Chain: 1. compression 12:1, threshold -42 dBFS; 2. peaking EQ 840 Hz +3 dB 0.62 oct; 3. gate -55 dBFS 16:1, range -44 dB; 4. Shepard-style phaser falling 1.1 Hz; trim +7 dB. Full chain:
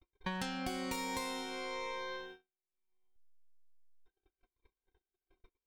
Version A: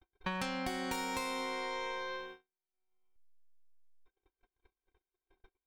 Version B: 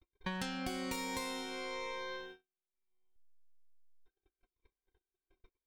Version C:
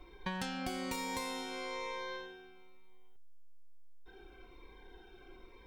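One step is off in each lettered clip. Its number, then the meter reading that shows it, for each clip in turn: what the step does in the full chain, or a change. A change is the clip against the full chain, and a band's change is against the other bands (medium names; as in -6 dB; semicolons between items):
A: 4, 1 kHz band +2.5 dB; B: 2, 1 kHz band -2.0 dB; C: 3, momentary loudness spread change +14 LU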